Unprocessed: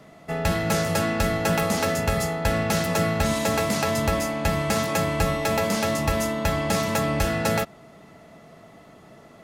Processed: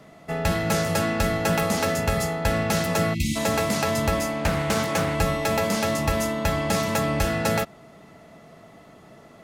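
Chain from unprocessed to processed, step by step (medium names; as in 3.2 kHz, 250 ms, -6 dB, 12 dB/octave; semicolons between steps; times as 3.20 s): 3.14–3.36 s: spectral selection erased 360–2000 Hz; 4.39–5.15 s: loudspeaker Doppler distortion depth 0.32 ms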